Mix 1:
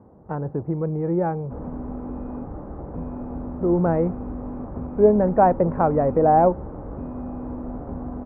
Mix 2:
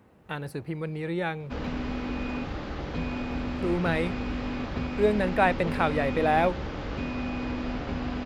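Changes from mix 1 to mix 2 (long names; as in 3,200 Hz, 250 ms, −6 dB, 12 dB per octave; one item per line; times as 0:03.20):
speech −8.0 dB
master: remove low-pass filter 1,000 Hz 24 dB per octave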